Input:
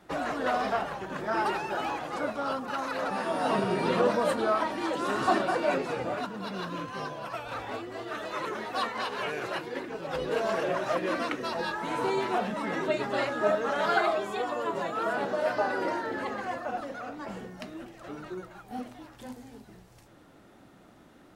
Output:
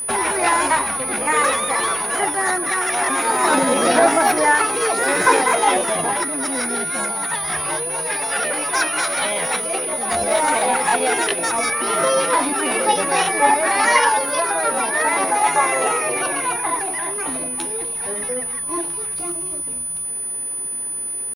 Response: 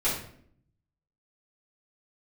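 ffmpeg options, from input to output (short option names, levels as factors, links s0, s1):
-af "asetrate=60591,aresample=44100,atempo=0.727827,acontrast=36,aeval=exprs='val(0)+0.0355*sin(2*PI*9900*n/s)':c=same,volume=1.78"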